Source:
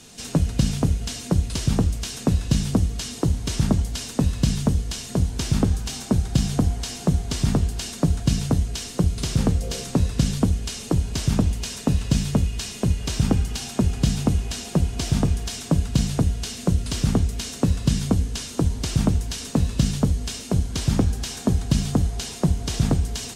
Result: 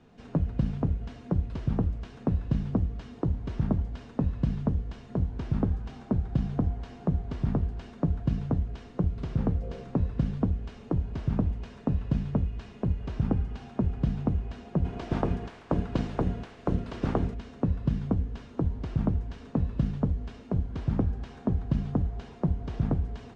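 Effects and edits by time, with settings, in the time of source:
14.84–17.33 s: spectral peaks clipped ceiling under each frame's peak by 16 dB
whole clip: low-pass 1.4 kHz 12 dB/octave; trim -6.5 dB

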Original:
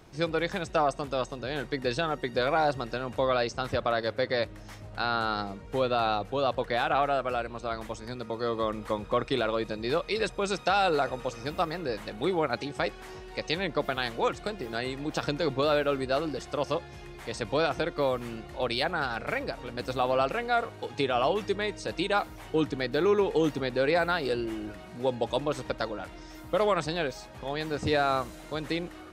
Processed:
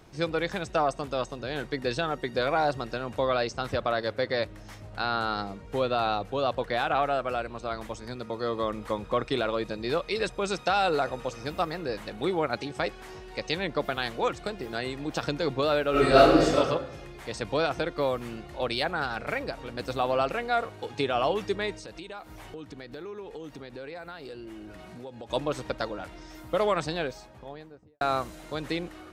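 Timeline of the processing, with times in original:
15.91–16.55 s: reverb throw, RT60 0.95 s, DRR -11.5 dB
21.74–25.30 s: compression 4:1, threshold -40 dBFS
26.86–28.01 s: studio fade out

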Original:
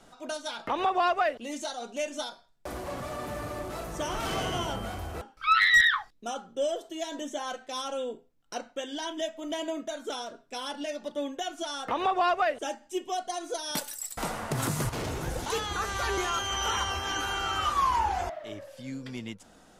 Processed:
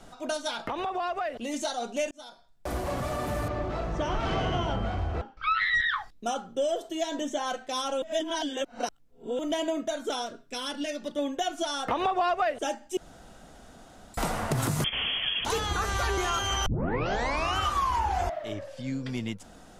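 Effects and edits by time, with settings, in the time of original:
0.66–1.54 s: compression 5:1, threshold -33 dBFS
2.11–2.74 s: fade in linear
3.48–5.89 s: distance through air 170 m
7.01–7.46 s: peaking EQ 11 kHz -8 dB 0.45 oct
8.02–9.39 s: reverse
10.26–11.19 s: peaking EQ 780 Hz -9 dB
12.97–14.14 s: room tone
14.84–15.45 s: frequency inversion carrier 3.3 kHz
16.66 s: tape start 0.92 s
18.53–19.09 s: low-pass 7.7 kHz
whole clip: bass shelf 140 Hz +7.5 dB; compression 4:1, threshold -28 dBFS; peaking EQ 700 Hz +2.5 dB 0.26 oct; trim +3.5 dB

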